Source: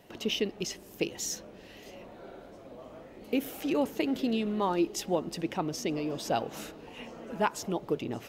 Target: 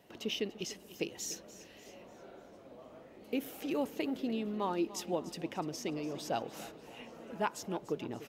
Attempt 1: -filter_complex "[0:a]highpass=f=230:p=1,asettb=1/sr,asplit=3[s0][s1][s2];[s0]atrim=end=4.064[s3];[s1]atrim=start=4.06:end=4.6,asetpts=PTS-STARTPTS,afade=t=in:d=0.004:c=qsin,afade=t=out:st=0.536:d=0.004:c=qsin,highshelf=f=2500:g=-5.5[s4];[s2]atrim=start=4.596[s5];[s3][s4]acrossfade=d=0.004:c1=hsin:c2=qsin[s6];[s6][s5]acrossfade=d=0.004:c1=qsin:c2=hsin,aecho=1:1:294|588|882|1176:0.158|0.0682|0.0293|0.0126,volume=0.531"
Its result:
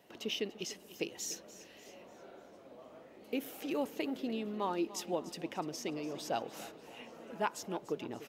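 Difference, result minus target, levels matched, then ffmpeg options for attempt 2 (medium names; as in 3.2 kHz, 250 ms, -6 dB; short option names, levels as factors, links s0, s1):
125 Hz band -2.5 dB
-filter_complex "[0:a]highpass=f=78:p=1,asettb=1/sr,asplit=3[s0][s1][s2];[s0]atrim=end=4.064[s3];[s1]atrim=start=4.06:end=4.6,asetpts=PTS-STARTPTS,afade=t=in:d=0.004:c=qsin,afade=t=out:st=0.536:d=0.004:c=qsin,highshelf=f=2500:g=-5.5[s4];[s2]atrim=start=4.596[s5];[s3][s4]acrossfade=d=0.004:c1=hsin:c2=qsin[s6];[s6][s5]acrossfade=d=0.004:c1=qsin:c2=hsin,aecho=1:1:294|588|882|1176:0.158|0.0682|0.0293|0.0126,volume=0.531"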